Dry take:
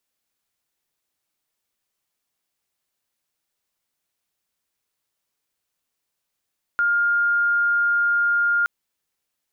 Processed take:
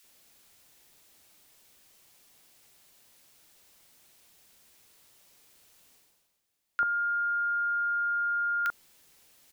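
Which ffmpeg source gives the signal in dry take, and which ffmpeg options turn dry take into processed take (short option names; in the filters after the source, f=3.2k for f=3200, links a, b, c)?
-f lavfi -i "aevalsrc='0.15*sin(2*PI*1410*t)':d=1.87:s=44100"
-filter_complex "[0:a]areverse,acompressor=mode=upward:threshold=-44dB:ratio=2.5,areverse,acrossover=split=1300[a][b];[a]adelay=40[c];[c][b]amix=inputs=2:normalize=0"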